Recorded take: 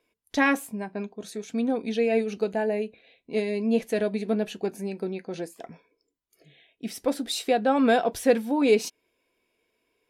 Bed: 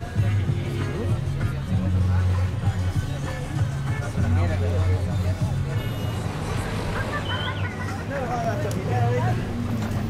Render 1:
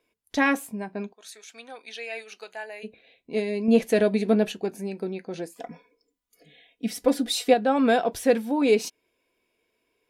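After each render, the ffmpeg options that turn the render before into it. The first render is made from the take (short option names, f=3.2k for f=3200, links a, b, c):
-filter_complex "[0:a]asplit=3[a][b][c];[a]afade=t=out:st=1.12:d=0.02[d];[b]highpass=1.2k,afade=t=in:st=1.12:d=0.02,afade=t=out:st=2.83:d=0.02[e];[c]afade=t=in:st=2.83:d=0.02[f];[d][e][f]amix=inputs=3:normalize=0,asettb=1/sr,asplit=3[g][h][i];[g]atrim=end=3.684[j];[h]atrim=start=3.68:end=4.52,asetpts=PTS-STARTPTS,afade=t=in:d=0.004:c=qsin,afade=t=out:st=0.836:d=0.004:c=qsin,acontrast=28[k];[i]atrim=start=4.516[l];[j][k]acrossfade=d=0.004:c1=hsin:c2=qsin[m];[m][l]acrossfade=d=0.004:c1=qsin:c2=hsin,asettb=1/sr,asplit=3[n][o][p];[n]atrim=end=5.564[q];[o]atrim=start=5.56:end=7.54,asetpts=PTS-STARTPTS,afade=t=in:d=0.004:c=qsin,afade=t=out:st=1.976:d=0.004:c=qsin,aecho=1:1:4.1:0.98,atrim=end_sample=87318[r];[p]atrim=start=7.536[s];[q][r]acrossfade=d=0.004:c1=hsin:c2=qsin[t];[t][s]acrossfade=d=0.004:c1=qsin:c2=hsin"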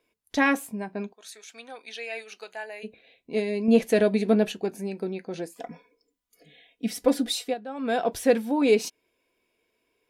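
-filter_complex "[0:a]asplit=3[a][b][c];[a]atrim=end=7.66,asetpts=PTS-STARTPTS,afade=t=out:st=7.29:d=0.37:c=qua:silence=0.188365[d];[b]atrim=start=7.66:end=7.68,asetpts=PTS-STARTPTS,volume=-14.5dB[e];[c]atrim=start=7.68,asetpts=PTS-STARTPTS,afade=t=in:d=0.37:c=qua:silence=0.188365[f];[d][e][f]concat=n=3:v=0:a=1"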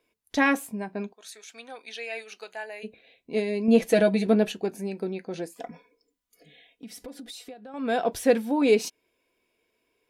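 -filter_complex "[0:a]asettb=1/sr,asplit=3[a][b][c];[a]atrim=end=3.814[d];[b]atrim=start=3.81:end=4.27,asetpts=PTS-STARTPTS,afade=t=in:d=0.004:c=qsin,afade=t=out:st=0.456:d=0.004:c=qsin,aecho=1:1:6.1:0.65,atrim=end_sample=20286[e];[c]atrim=start=4.266[f];[d][e]acrossfade=d=0.004:c1=hsin:c2=qsin[g];[g][f]acrossfade=d=0.004:c1=qsin:c2=hsin,asettb=1/sr,asplit=3[h][i][j];[h]atrim=end=5.704[k];[i]atrim=start=5.7:end=7.74,asetpts=PTS-STARTPTS,afade=t=in:d=0.004:c=qsin,afade=t=out:st=2.036:d=0.004:c=qsin,acompressor=threshold=-39dB:ratio=6:attack=3.2:release=140:knee=1:detection=peak[l];[j]atrim=start=7.736[m];[k][l]acrossfade=d=0.004:c1=hsin:c2=qsin[n];[n][m]acrossfade=d=0.004:c1=qsin:c2=hsin"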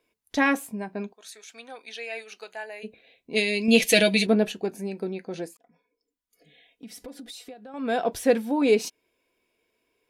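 -filter_complex "[0:a]asplit=3[a][b][c];[a]afade=t=out:st=3.35:d=0.02[d];[b]highshelf=f=1.8k:t=q:w=1.5:g=12.5,afade=t=in:st=3.35:d=0.02,afade=t=out:st=4.25:d=0.02[e];[c]afade=t=in:st=4.25:d=0.02[f];[d][e][f]amix=inputs=3:normalize=0,asplit=2[g][h];[g]atrim=end=5.57,asetpts=PTS-STARTPTS,afade=t=out:st=5.566:d=0.004:c=hsin[i];[h]atrim=start=5.57,asetpts=PTS-STARTPTS,afade=t=in:d=1.33[j];[i][j]concat=n=2:v=0:a=1"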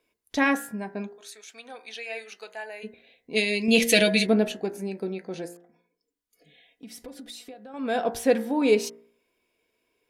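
-af "bandreject=f=58.03:t=h:w=4,bandreject=f=116.06:t=h:w=4,bandreject=f=174.09:t=h:w=4,bandreject=f=232.12:t=h:w=4,bandreject=f=290.15:t=h:w=4,bandreject=f=348.18:t=h:w=4,bandreject=f=406.21:t=h:w=4,bandreject=f=464.24:t=h:w=4,bandreject=f=522.27:t=h:w=4,bandreject=f=580.3:t=h:w=4,bandreject=f=638.33:t=h:w=4,bandreject=f=696.36:t=h:w=4,bandreject=f=754.39:t=h:w=4,bandreject=f=812.42:t=h:w=4,bandreject=f=870.45:t=h:w=4,bandreject=f=928.48:t=h:w=4,bandreject=f=986.51:t=h:w=4,bandreject=f=1.04454k:t=h:w=4,bandreject=f=1.10257k:t=h:w=4,bandreject=f=1.1606k:t=h:w=4,bandreject=f=1.21863k:t=h:w=4,bandreject=f=1.27666k:t=h:w=4,bandreject=f=1.33469k:t=h:w=4,bandreject=f=1.39272k:t=h:w=4,bandreject=f=1.45075k:t=h:w=4,bandreject=f=1.50878k:t=h:w=4,bandreject=f=1.56681k:t=h:w=4,bandreject=f=1.62484k:t=h:w=4,bandreject=f=1.68287k:t=h:w=4,bandreject=f=1.7409k:t=h:w=4,bandreject=f=1.79893k:t=h:w=4,bandreject=f=1.85696k:t=h:w=4,bandreject=f=1.91499k:t=h:w=4,bandreject=f=1.97302k:t=h:w=4,bandreject=f=2.03105k:t=h:w=4,bandreject=f=2.08908k:t=h:w=4,bandreject=f=2.14711k:t=h:w=4"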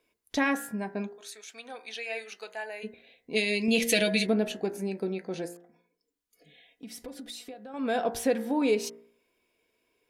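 -af "acompressor=threshold=-25dB:ratio=2"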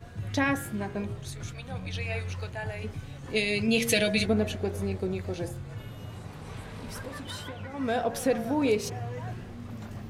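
-filter_complex "[1:a]volume=-14dB[a];[0:a][a]amix=inputs=2:normalize=0"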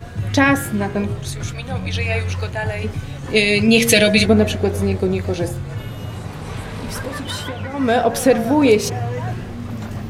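-af "volume=12dB,alimiter=limit=-1dB:level=0:latency=1"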